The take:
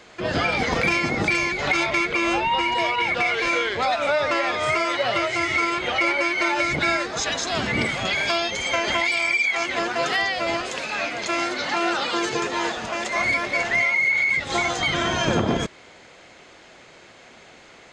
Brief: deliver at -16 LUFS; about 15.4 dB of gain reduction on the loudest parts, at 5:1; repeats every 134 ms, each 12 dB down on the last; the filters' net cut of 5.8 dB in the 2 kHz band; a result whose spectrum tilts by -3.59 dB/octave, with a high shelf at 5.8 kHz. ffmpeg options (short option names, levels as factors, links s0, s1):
-af "equalizer=f=2000:t=o:g=-6,highshelf=f=5800:g=-5.5,acompressor=threshold=0.0158:ratio=5,aecho=1:1:134|268|402:0.251|0.0628|0.0157,volume=10.6"